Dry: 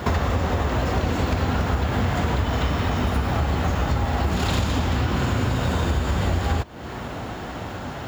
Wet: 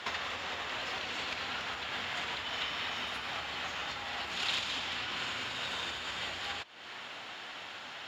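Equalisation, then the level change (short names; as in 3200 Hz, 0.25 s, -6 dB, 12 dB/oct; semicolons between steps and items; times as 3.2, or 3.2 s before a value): band-pass 3100 Hz, Q 1.4; 0.0 dB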